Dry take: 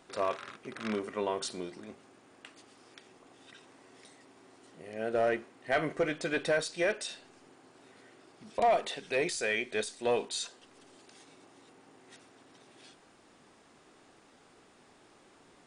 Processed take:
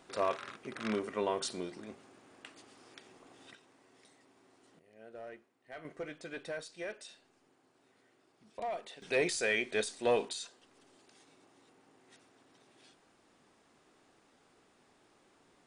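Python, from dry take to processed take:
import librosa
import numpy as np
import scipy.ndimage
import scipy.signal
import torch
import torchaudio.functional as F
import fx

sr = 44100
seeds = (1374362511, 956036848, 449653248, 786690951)

y = fx.gain(x, sr, db=fx.steps((0.0, -0.5), (3.55, -7.5), (4.79, -19.0), (5.85, -12.0), (9.02, 0.0), (10.33, -6.5)))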